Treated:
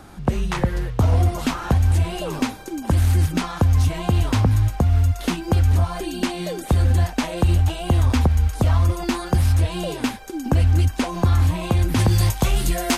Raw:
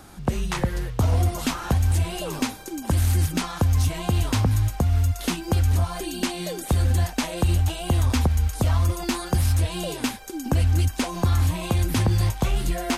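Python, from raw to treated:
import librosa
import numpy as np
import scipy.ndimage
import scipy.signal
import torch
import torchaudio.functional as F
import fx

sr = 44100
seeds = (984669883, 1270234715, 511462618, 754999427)

y = fx.high_shelf(x, sr, hz=4000.0, db=fx.steps((0.0, -8.0), (11.98, 5.0)))
y = y * 10.0 ** (3.5 / 20.0)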